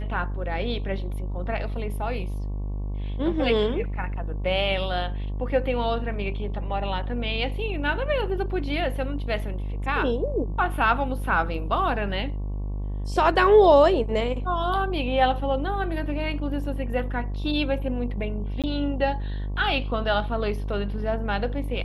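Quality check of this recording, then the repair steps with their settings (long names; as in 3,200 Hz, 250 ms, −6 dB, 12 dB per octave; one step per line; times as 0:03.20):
mains buzz 50 Hz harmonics 23 −29 dBFS
0:18.62–0:18.64: drop-out 17 ms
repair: hum removal 50 Hz, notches 23
repair the gap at 0:18.62, 17 ms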